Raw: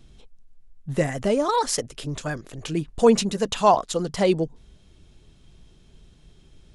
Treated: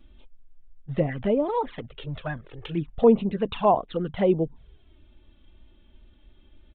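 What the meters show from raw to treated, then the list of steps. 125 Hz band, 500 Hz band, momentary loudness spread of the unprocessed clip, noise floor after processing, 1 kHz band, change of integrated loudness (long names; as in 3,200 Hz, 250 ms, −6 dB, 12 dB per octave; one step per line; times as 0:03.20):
−1.0 dB, −1.5 dB, 13 LU, −56 dBFS, −4.0 dB, −2.0 dB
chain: treble cut that deepens with the level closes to 1,500 Hz, closed at −17 dBFS
downsampling to 8,000 Hz
flanger swept by the level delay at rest 3.7 ms, full sweep at −18 dBFS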